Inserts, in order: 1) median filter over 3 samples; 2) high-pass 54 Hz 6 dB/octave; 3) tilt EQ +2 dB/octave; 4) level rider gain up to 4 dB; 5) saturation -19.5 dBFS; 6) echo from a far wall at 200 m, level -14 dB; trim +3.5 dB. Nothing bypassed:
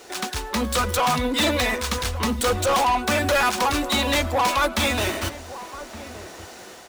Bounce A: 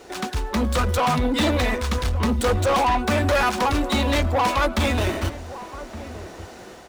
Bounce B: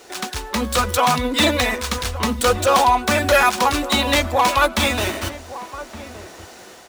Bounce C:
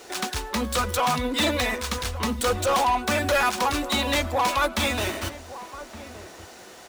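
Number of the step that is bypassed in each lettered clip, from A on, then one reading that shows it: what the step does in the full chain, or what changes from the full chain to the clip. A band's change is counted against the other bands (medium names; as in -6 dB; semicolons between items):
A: 3, 125 Hz band +7.0 dB; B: 5, distortion -10 dB; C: 4, crest factor change +2.0 dB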